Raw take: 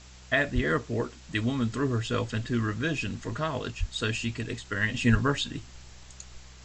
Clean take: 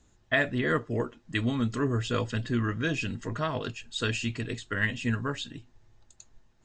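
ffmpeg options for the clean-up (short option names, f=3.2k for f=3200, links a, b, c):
-filter_complex "[0:a]bandreject=f=63:t=h:w=4,bandreject=f=126:t=h:w=4,bandreject=f=189:t=h:w=4,asplit=3[a][b][c];[a]afade=t=out:st=0.54:d=0.02[d];[b]highpass=f=140:w=0.5412,highpass=f=140:w=1.3066,afade=t=in:st=0.54:d=0.02,afade=t=out:st=0.66:d=0.02[e];[c]afade=t=in:st=0.66:d=0.02[f];[d][e][f]amix=inputs=3:normalize=0,asplit=3[g][h][i];[g]afade=t=out:st=3.79:d=0.02[j];[h]highpass=f=140:w=0.5412,highpass=f=140:w=1.3066,afade=t=in:st=3.79:d=0.02,afade=t=out:st=3.91:d=0.02[k];[i]afade=t=in:st=3.91:d=0.02[l];[j][k][l]amix=inputs=3:normalize=0,asplit=3[m][n][o];[m]afade=t=out:st=5.11:d=0.02[p];[n]highpass=f=140:w=0.5412,highpass=f=140:w=1.3066,afade=t=in:st=5.11:d=0.02,afade=t=out:st=5.23:d=0.02[q];[o]afade=t=in:st=5.23:d=0.02[r];[p][q][r]amix=inputs=3:normalize=0,afwtdn=0.0032,asetnsamples=n=441:p=0,asendcmd='4.94 volume volume -6dB',volume=0dB"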